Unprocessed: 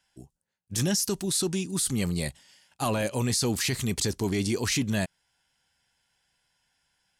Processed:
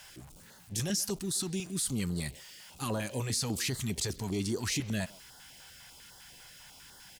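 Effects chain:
converter with a step at zero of −41 dBFS
far-end echo of a speakerphone 130 ms, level −18 dB
notch on a step sequencer 10 Hz 250–2,400 Hz
level −5.5 dB

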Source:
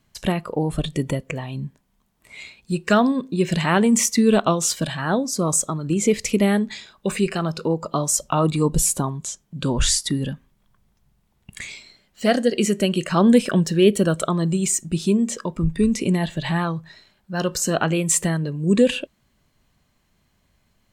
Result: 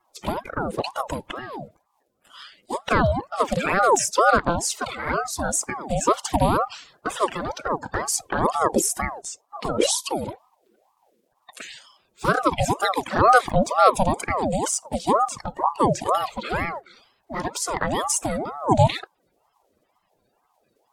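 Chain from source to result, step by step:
spectral magnitudes quantised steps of 30 dB
flanger swept by the level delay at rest 7.7 ms, full sweep at −14.5 dBFS
ring modulator whose carrier an LFO sweeps 680 Hz, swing 50%, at 2.1 Hz
level +3 dB

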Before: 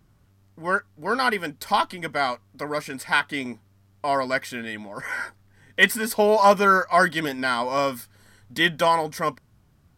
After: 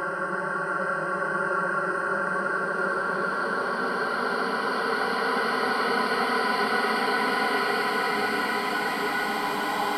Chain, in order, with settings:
reverb reduction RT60 1.8 s
extreme stretch with random phases 9.9×, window 1.00 s, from 0:00.54

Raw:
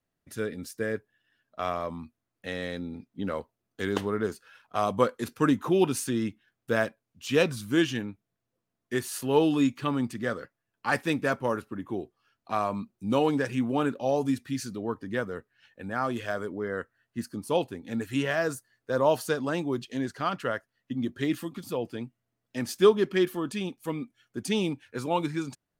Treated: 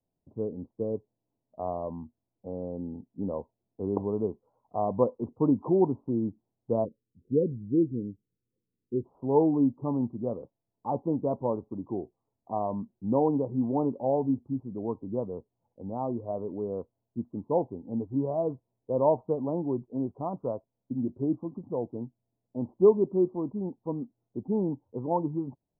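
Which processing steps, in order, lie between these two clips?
adaptive Wiener filter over 15 samples
Butterworth low-pass 1,000 Hz 72 dB per octave, from 0:06.84 500 Hz, from 0:09.04 1,000 Hz

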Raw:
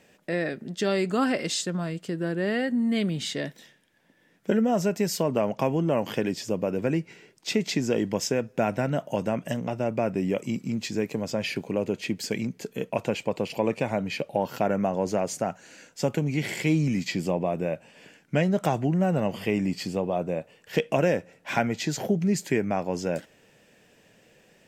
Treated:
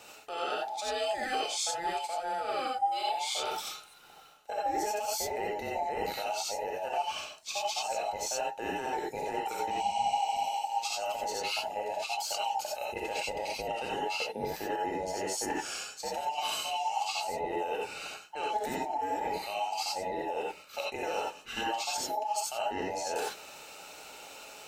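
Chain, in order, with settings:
frequency inversion band by band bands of 1,000 Hz
high-shelf EQ 2,000 Hz +10 dB
reversed playback
downward compressor 16 to 1, threshold −36 dBFS, peak gain reduction 21 dB
reversed playback
healed spectral selection 0:09.74–0:10.48, 300–9,400 Hz after
reverb whose tail is shaped and stops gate 110 ms rising, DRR −3 dB
level +2 dB

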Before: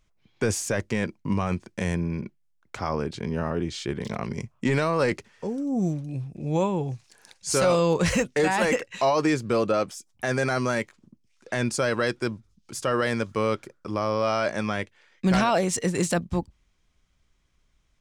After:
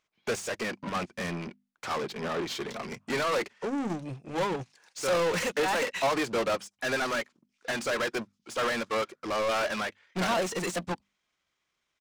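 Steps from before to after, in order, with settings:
mid-hump overdrive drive 32 dB, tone 6,900 Hz, clips at −13 dBFS
high-shelf EQ 8,000 Hz −4 dB
tempo change 1.5×
low-shelf EQ 81 Hz −6.5 dB
mains-hum notches 50/100/150/200/250 Hz
in parallel at −8.5 dB: soft clipping −21 dBFS, distortion −15 dB
on the sum: expander for the loud parts 2.5 to 1, over −30 dBFS
level −7.5 dB

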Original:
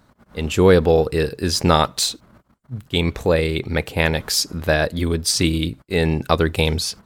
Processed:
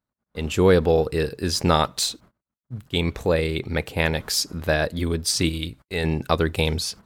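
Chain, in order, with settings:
0:05.49–0:06.04: parametric band 240 Hz −6.5 dB 2.6 octaves
noise gate −43 dBFS, range −27 dB
level −3.5 dB

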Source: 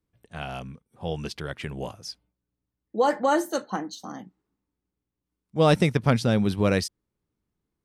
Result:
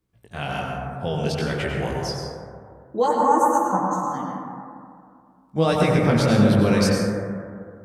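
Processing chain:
0:03.06–0:04.12: drawn EQ curve 200 Hz 0 dB, 530 Hz −11 dB, 1,000 Hz +8 dB, 1,600 Hz −12 dB, 4,300 Hz −30 dB, 6,800 Hz +2 dB, 11,000 Hz −4 dB
brickwall limiter −17 dBFS, peak gain reduction 8.5 dB
chorus effect 1.2 Hz, delay 15.5 ms, depth 6 ms
dense smooth reverb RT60 2.3 s, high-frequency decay 0.25×, pre-delay 80 ms, DRR −1.5 dB
level +8 dB

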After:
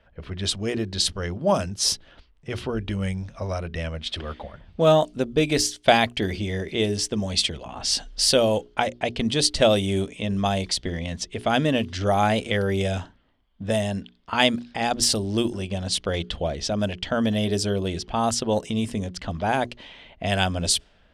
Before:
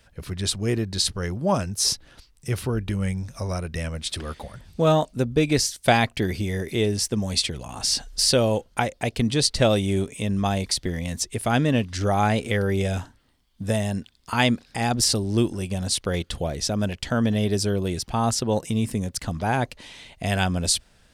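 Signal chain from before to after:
mains-hum notches 60/120/180/240/300/360/420 Hz
low-pass that shuts in the quiet parts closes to 1,800 Hz, open at −17.5 dBFS
thirty-one-band graphic EQ 125 Hz −9 dB, 630 Hz +4 dB, 3,150 Hz +6 dB

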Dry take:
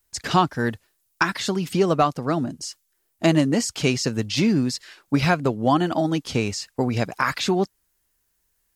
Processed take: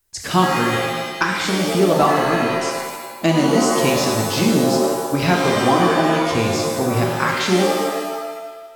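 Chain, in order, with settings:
reverb with rising layers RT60 1.3 s, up +7 semitones, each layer −2 dB, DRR 0.5 dB

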